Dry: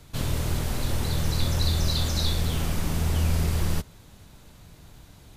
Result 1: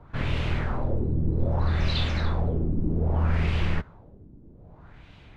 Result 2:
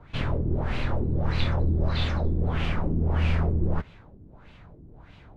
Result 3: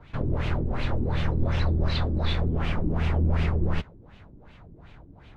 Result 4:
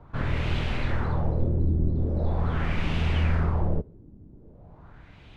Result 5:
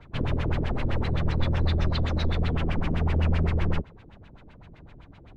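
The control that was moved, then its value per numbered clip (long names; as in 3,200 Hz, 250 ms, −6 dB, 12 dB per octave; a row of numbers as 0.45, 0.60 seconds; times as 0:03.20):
auto-filter low-pass, speed: 0.63, 1.6, 2.7, 0.42, 7.8 Hertz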